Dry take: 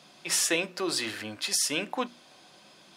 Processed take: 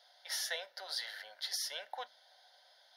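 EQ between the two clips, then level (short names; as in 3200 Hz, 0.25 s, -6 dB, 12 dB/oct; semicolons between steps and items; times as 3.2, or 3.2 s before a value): HPF 580 Hz 24 dB/oct; fixed phaser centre 1700 Hz, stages 8; -6.0 dB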